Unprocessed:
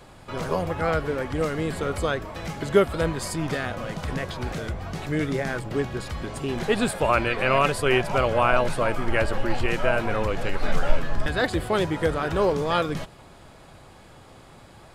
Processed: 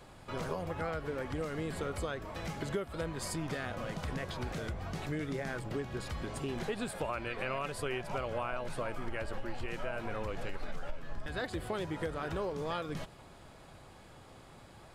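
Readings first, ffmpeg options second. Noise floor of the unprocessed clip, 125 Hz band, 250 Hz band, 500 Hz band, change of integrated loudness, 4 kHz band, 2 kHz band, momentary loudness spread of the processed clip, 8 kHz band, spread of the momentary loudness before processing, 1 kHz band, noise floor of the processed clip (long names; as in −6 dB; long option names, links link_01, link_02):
−49 dBFS, −11.0 dB, −11.5 dB, −13.5 dB, −13.0 dB, −12.0 dB, −13.5 dB, 16 LU, −9.5 dB, 10 LU, −13.5 dB, −55 dBFS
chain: -af "acompressor=threshold=-27dB:ratio=6,volume=-6dB"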